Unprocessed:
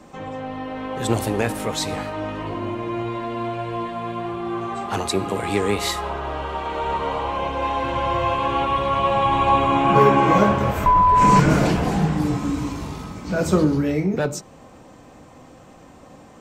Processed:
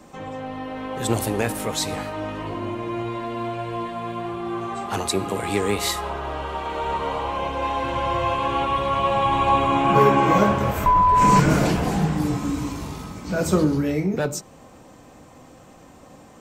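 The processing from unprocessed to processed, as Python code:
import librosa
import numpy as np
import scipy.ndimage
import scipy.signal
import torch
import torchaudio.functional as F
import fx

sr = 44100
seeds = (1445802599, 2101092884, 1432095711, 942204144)

y = fx.high_shelf(x, sr, hz=8200.0, db=8.0)
y = y * librosa.db_to_amplitude(-1.5)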